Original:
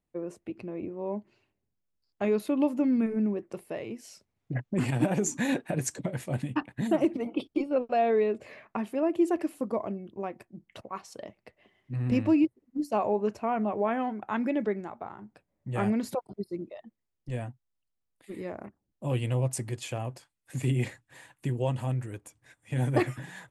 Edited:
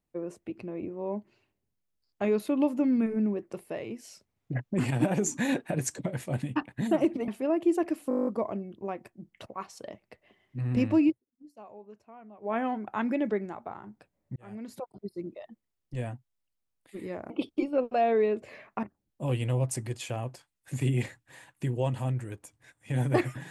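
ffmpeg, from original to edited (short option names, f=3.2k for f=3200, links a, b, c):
-filter_complex "[0:a]asplit=16[a][b][c][d][e][f][g][h][i][j][k][l][m][n][o][p];[a]atrim=end=7.282[q];[b]atrim=start=8.808:end=9.642[r];[c]atrim=start=9.618:end=9.642[s];[d]atrim=start=9.618:end=9.642[t];[e]atrim=start=9.618:end=9.642[u];[f]atrim=start=9.618:end=9.642[v];[g]atrim=start=9.618:end=9.642[w];[h]atrim=start=9.618:end=9.642[x];[i]atrim=start=9.618:end=9.642[y];[j]atrim=start=9.618:end=9.642[z];[k]atrim=start=9.618:end=12.58,asetpts=PTS-STARTPTS,afade=t=out:st=2.812:d=0.15:silence=0.0891251[aa];[l]atrim=start=12.58:end=13.76,asetpts=PTS-STARTPTS,volume=-21dB[ab];[m]atrim=start=13.76:end=15.71,asetpts=PTS-STARTPTS,afade=t=in:d=0.15:silence=0.0891251,afade=t=out:st=1.946:d=0.004:c=hsin[ac];[n]atrim=start=15.71:end=18.652,asetpts=PTS-STARTPTS,afade=t=in:d=1.03[ad];[o]atrim=start=7.278:end=8.812[ae];[p]atrim=start=18.648[af];[q][r]acrossfade=d=0.004:c1=hsin:c2=hsin[ag];[ag][s]acrossfade=d=0.004:c1=hsin:c2=hsin[ah];[ah][t]acrossfade=d=0.004:c1=hsin:c2=hsin[ai];[ai][u]acrossfade=d=0.004:c1=hsin:c2=hsin[aj];[aj][v]acrossfade=d=0.004:c1=hsin:c2=hsin[ak];[ak][w]acrossfade=d=0.004:c1=hsin:c2=hsin[al];[al][x]acrossfade=d=0.004:c1=hsin:c2=hsin[am];[am][y]acrossfade=d=0.004:c1=hsin:c2=hsin[an];[an][z]acrossfade=d=0.004:c1=hsin:c2=hsin[ao];[aa][ab][ac][ad]concat=n=4:v=0:a=1[ap];[ao][ap]acrossfade=d=0.004:c1=hsin:c2=hsin[aq];[aq][ae]acrossfade=d=0.004:c1=hsin:c2=hsin[ar];[ar][af]acrossfade=d=0.004:c1=hsin:c2=hsin"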